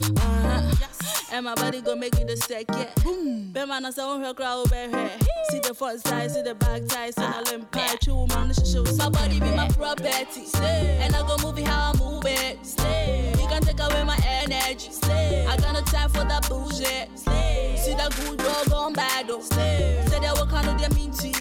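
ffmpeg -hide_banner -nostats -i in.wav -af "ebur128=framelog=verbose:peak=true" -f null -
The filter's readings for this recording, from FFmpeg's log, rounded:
Integrated loudness:
  I:         -24.6 LUFS
  Threshold: -34.6 LUFS
Loudness range:
  LRA:         3.2 LU
  Threshold: -44.6 LUFS
  LRA low:   -26.6 LUFS
  LRA high:  -23.5 LUFS
True peak:
  Peak:      -11.9 dBFS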